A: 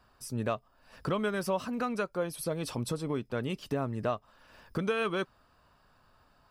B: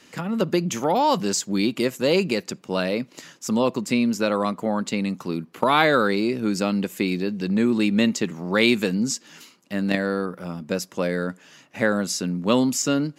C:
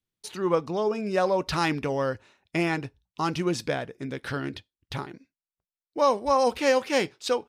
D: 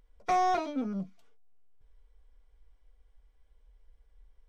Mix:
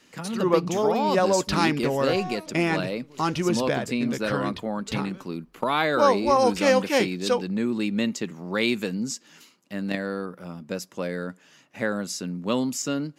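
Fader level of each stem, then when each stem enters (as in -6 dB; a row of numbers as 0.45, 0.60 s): -19.0, -5.5, +2.0, -8.5 dB; 0.00, 0.00, 0.00, 1.80 s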